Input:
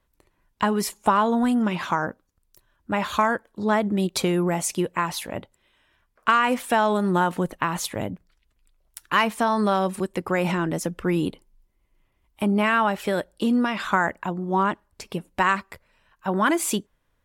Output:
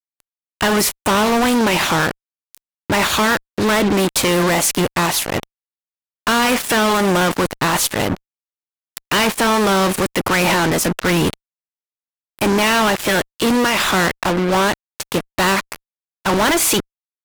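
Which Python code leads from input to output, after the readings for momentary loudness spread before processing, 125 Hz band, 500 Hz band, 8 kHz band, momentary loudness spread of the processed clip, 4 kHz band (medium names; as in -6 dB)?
10 LU, +6.5 dB, +7.5 dB, +13.0 dB, 8 LU, +14.0 dB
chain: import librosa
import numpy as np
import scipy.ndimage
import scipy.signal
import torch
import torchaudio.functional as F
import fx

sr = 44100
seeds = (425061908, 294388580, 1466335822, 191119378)

y = fx.spec_clip(x, sr, under_db=13)
y = fx.fuzz(y, sr, gain_db=36.0, gate_db=-36.0)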